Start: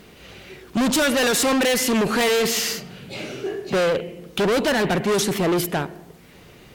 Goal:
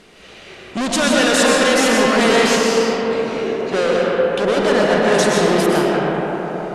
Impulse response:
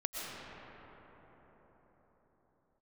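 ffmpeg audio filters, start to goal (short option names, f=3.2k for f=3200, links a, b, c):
-filter_complex "[0:a]lowpass=f=10k:w=0.5412,lowpass=f=10k:w=1.3066,equalizer=f=86:t=o:w=2.6:g=-9[a];[1:a]atrim=start_sample=2205[b];[a][b]afir=irnorm=-1:irlink=0,asplit=3[c][d][e];[c]afade=t=out:st=2.55:d=0.02[f];[d]adynamicequalizer=threshold=0.0282:dfrequency=1700:dqfactor=0.7:tfrequency=1700:tqfactor=0.7:attack=5:release=100:ratio=0.375:range=2:mode=cutabove:tftype=highshelf,afade=t=in:st=2.55:d=0.02,afade=t=out:st=5.05:d=0.02[g];[e]afade=t=in:st=5.05:d=0.02[h];[f][g][h]amix=inputs=3:normalize=0,volume=3.5dB"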